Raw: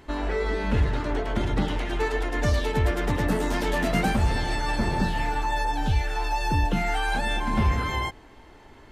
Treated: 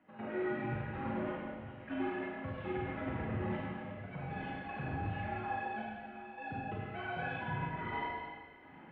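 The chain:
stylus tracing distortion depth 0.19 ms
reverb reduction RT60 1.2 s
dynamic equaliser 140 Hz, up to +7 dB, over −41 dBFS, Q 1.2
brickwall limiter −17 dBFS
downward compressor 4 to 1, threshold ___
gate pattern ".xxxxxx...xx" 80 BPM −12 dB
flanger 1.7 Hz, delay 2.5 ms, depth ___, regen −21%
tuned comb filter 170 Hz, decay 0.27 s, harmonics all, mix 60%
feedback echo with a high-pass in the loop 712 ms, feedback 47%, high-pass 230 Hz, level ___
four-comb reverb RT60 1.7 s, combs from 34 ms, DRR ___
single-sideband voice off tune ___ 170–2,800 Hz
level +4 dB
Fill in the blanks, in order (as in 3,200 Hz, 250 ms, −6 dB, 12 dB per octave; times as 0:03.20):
−33 dBFS, 5.5 ms, −23.5 dB, −4.5 dB, −74 Hz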